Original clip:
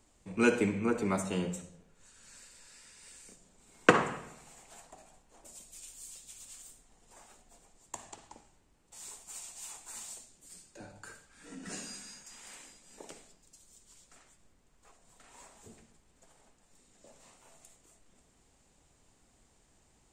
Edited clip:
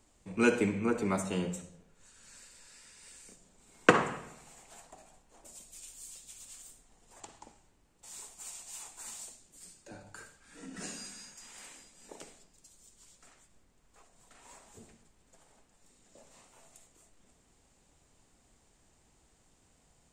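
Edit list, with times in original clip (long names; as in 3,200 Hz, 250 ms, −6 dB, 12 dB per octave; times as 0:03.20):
0:07.20–0:08.09: remove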